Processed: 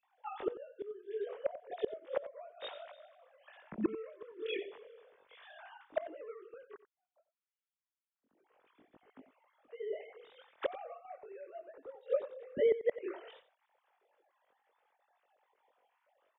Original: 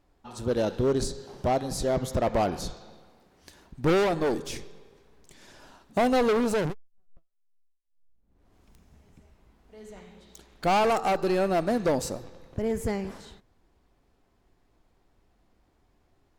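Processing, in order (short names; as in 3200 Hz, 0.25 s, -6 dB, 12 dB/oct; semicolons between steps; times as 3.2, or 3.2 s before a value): sine-wave speech; chorus voices 2, 0.33 Hz, delay 21 ms, depth 2.1 ms; flipped gate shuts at -27 dBFS, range -29 dB; on a send: echo 90 ms -14.5 dB; on the sum: gain +7 dB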